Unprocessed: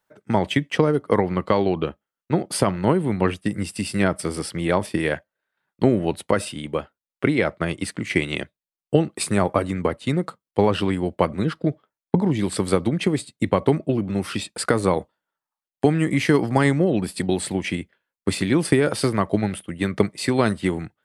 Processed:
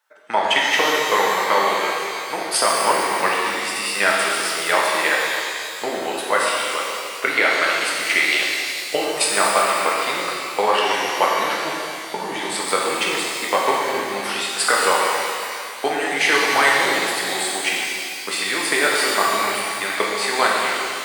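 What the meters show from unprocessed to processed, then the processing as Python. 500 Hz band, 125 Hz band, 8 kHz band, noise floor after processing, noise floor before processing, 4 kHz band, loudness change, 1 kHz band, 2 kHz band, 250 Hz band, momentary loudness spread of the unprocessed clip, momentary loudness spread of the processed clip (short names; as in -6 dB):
-0.5 dB, -21.0 dB, +10.0 dB, -30 dBFS, under -85 dBFS, +12.0 dB, +3.5 dB, +9.0 dB, +11.5 dB, -10.5 dB, 8 LU, 8 LU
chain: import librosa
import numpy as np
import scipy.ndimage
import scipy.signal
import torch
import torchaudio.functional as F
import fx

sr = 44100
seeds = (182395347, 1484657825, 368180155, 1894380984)

p1 = fx.fade_out_tail(x, sr, length_s=0.65)
p2 = scipy.signal.sosfilt(scipy.signal.butter(2, 920.0, 'highpass', fs=sr, output='sos'), p1)
p3 = fx.high_shelf(p2, sr, hz=9600.0, db=-5.0)
p4 = fx.level_steps(p3, sr, step_db=14)
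p5 = p3 + F.gain(torch.from_numpy(p4), 2.0).numpy()
p6 = fx.rev_shimmer(p5, sr, seeds[0], rt60_s=2.5, semitones=12, shimmer_db=-8, drr_db=-4.0)
y = F.gain(torch.from_numpy(p6), 1.0).numpy()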